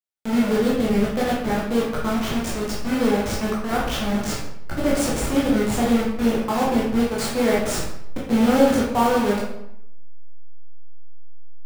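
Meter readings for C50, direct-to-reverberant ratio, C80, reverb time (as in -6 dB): 2.0 dB, -6.0 dB, 6.0 dB, 0.80 s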